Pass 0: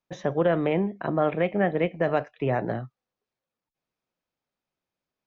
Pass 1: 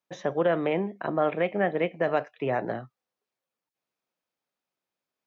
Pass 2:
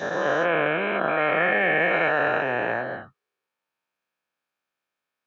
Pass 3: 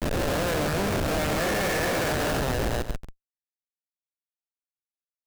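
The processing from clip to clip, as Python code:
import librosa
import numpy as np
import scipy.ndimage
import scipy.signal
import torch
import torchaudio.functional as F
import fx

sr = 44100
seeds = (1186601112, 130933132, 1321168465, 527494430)

y1 = fx.highpass(x, sr, hz=290.0, slope=6)
y2 = fx.spec_dilate(y1, sr, span_ms=480)
y2 = fx.peak_eq(y2, sr, hz=1800.0, db=11.5, octaves=1.5)
y2 = fx.notch(y2, sr, hz=2000.0, q=6.8)
y2 = F.gain(torch.from_numpy(y2), -7.5).numpy()
y3 = fx.schmitt(y2, sr, flips_db=-23.0)
y3 = y3 + 10.0 ** (-11.5 / 20.0) * np.pad(y3, (int(138 * sr / 1000.0), 0))[:len(y3)]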